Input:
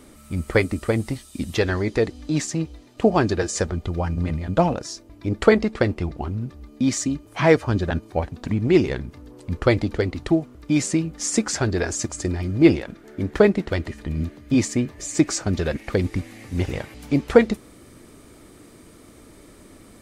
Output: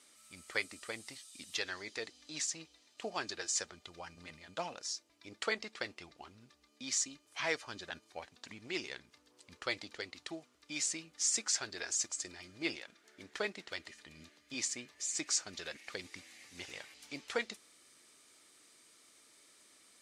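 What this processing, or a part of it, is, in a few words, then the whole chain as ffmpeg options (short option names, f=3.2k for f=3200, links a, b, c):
piezo pickup straight into a mixer: -af "lowpass=5.9k,aderivative"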